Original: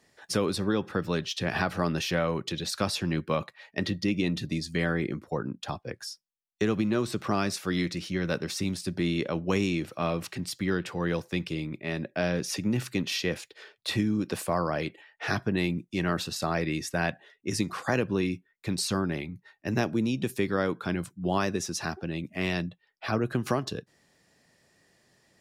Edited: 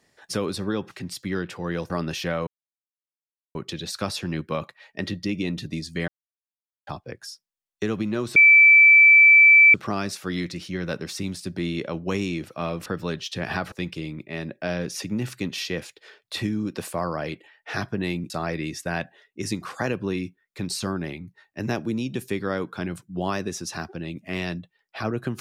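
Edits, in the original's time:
0:00.91–0:01.77: swap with 0:10.27–0:11.26
0:02.34: splice in silence 1.08 s
0:04.87–0:05.66: silence
0:07.15: insert tone 2,320 Hz −9 dBFS 1.38 s
0:15.84–0:16.38: remove

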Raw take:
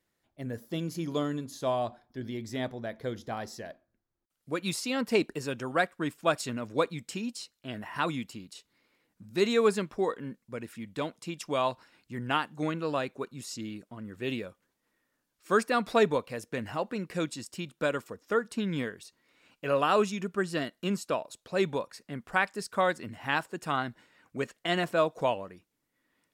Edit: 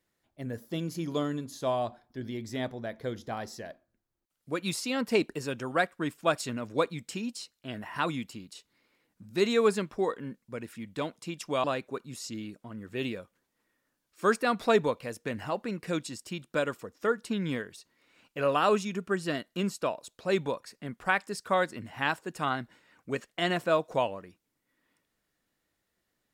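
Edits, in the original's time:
0:11.64–0:12.91: remove

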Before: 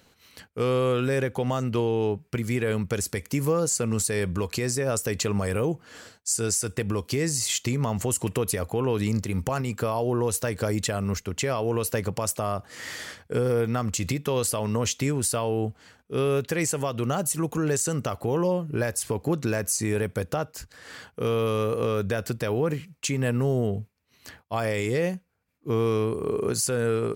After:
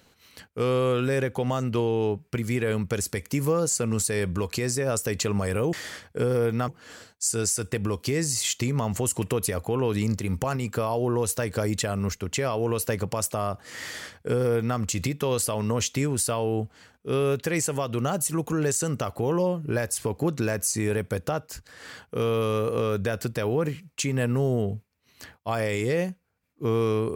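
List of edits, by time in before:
0:12.88–0:13.83: duplicate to 0:05.73

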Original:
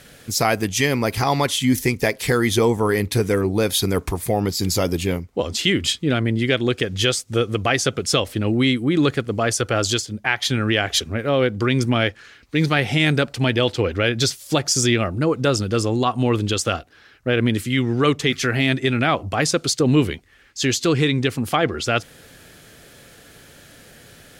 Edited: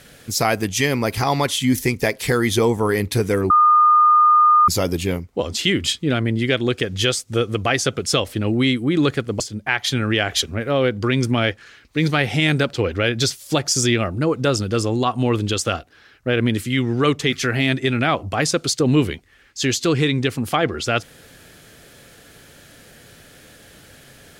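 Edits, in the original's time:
0:03.50–0:04.68: beep over 1,220 Hz −9.5 dBFS
0:09.40–0:09.98: remove
0:13.31–0:13.73: remove

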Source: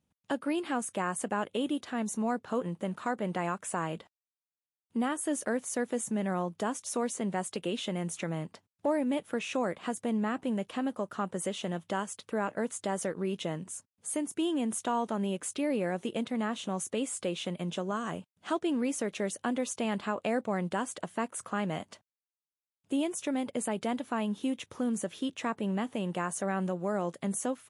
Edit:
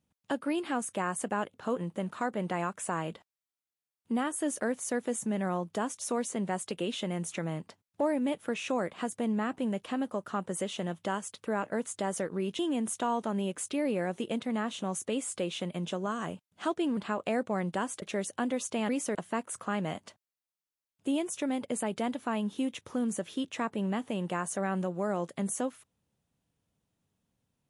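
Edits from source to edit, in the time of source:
0:01.54–0:02.39: remove
0:13.44–0:14.44: remove
0:18.82–0:19.08: swap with 0:19.95–0:21.00

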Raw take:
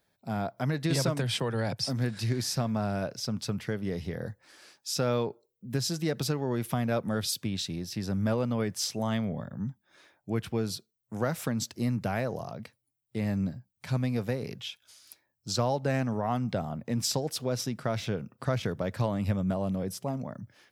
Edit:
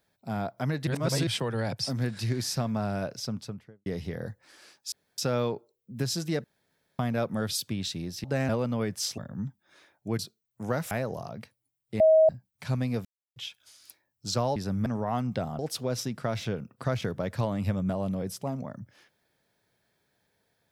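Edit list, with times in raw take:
0:00.87–0:01.27: reverse
0:03.16–0:03.86: fade out and dull
0:04.92: splice in room tone 0.26 s
0:06.18–0:06.73: fill with room tone
0:07.98–0:08.28: swap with 0:15.78–0:16.03
0:08.97–0:09.40: remove
0:10.41–0:10.71: remove
0:11.43–0:12.13: remove
0:13.22–0:13.51: beep over 635 Hz −15 dBFS
0:14.27–0:14.58: silence
0:16.76–0:17.20: remove

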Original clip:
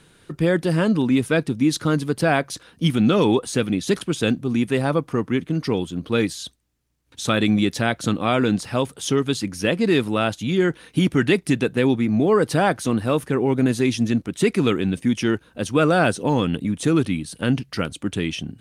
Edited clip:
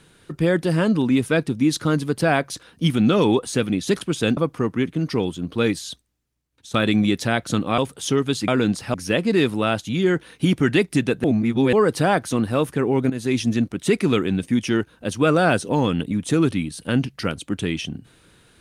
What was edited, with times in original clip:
0:04.37–0:04.91: remove
0:06.42–0:07.28: fade out, to −12.5 dB
0:08.32–0:08.78: move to 0:09.48
0:11.78–0:12.27: reverse
0:13.64–0:13.91: fade in, from −13 dB

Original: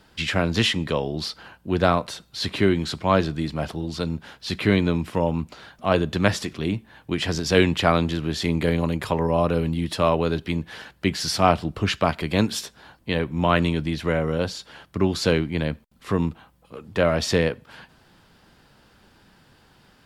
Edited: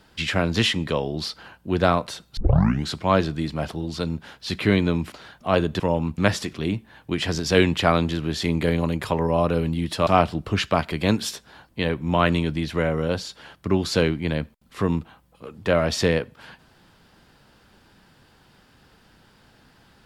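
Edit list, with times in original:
0:02.37: tape start 0.49 s
0:05.12–0:05.50: move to 0:06.18
0:10.07–0:11.37: remove

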